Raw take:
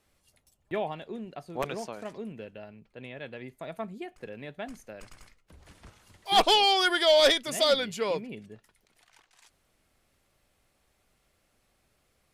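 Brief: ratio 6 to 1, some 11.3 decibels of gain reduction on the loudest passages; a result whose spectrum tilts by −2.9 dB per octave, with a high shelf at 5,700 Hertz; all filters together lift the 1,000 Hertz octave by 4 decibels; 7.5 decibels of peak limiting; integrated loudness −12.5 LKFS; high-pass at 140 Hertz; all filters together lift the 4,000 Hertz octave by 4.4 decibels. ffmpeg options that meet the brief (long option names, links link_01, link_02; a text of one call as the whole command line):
ffmpeg -i in.wav -af "highpass=140,equalizer=frequency=1000:width_type=o:gain=5.5,equalizer=frequency=4000:width_type=o:gain=7,highshelf=frequency=5700:gain=-5,acompressor=threshold=-26dB:ratio=6,volume=23dB,alimiter=limit=-0.5dB:level=0:latency=1" out.wav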